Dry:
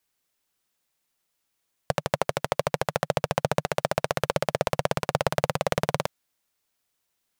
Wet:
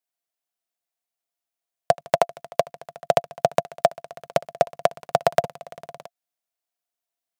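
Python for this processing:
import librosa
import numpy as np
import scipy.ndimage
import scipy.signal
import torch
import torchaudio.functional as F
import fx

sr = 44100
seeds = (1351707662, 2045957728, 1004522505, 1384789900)

y = fx.high_shelf(x, sr, hz=8200.0, db=2.0)
y = fx.level_steps(y, sr, step_db=23)
y = fx.highpass(y, sr, hz=250.0, slope=6)
y = fx.peak_eq(y, sr, hz=690.0, db=15.0, octaves=0.21)
y = F.gain(torch.from_numpy(y), 3.0).numpy()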